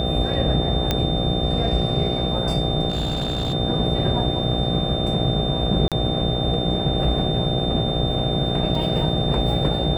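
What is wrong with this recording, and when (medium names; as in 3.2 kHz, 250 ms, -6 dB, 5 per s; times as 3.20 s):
buzz 60 Hz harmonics 13 -26 dBFS
whine 3.6 kHz -27 dBFS
0.91 s: pop -6 dBFS
2.89–3.54 s: clipped -19.5 dBFS
5.88–5.92 s: dropout 37 ms
8.75 s: dropout 3 ms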